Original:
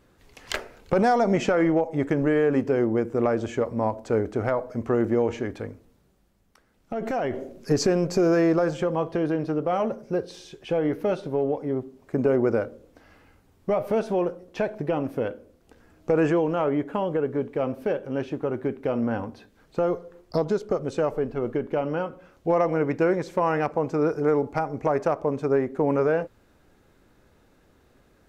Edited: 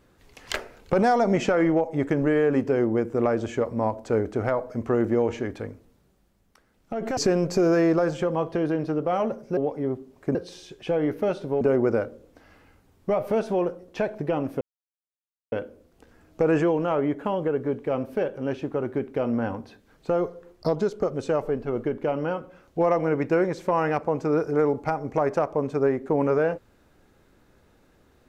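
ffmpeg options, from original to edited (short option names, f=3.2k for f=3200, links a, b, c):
-filter_complex "[0:a]asplit=6[a][b][c][d][e][f];[a]atrim=end=7.172[g];[b]atrim=start=7.768:end=10.172[h];[c]atrim=start=11.428:end=12.212[i];[d]atrim=start=10.168:end=11.432[j];[e]atrim=start=12.208:end=15.21,asetpts=PTS-STARTPTS,afade=t=out:st=2.998:d=0.004:c=hsin,apad=pad_dur=0.91[k];[f]atrim=start=15.21,asetpts=PTS-STARTPTS,afade=t=in:d=0.004:c=hsin[l];[g][h]acrossfade=d=0.004:c1=hsin:c2=hsin[m];[m][i]acrossfade=d=0.004:c1=hsin:c2=hsin[n];[n][j]acrossfade=d=0.004:c1=hsin:c2=hsin[o];[k][l]concat=n=2:v=0:a=1[p];[o][p]acrossfade=d=0.004:c1=hsin:c2=hsin"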